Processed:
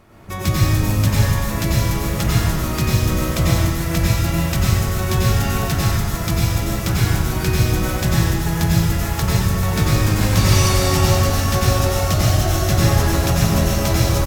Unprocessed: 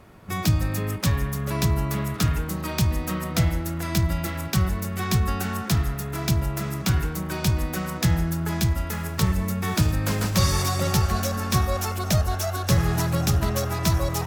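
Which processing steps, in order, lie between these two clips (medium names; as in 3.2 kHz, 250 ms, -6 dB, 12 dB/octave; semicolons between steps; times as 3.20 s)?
harmony voices -12 st -5 dB; plate-style reverb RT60 1.7 s, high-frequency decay 0.95×, pre-delay 80 ms, DRR -6 dB; trim -1 dB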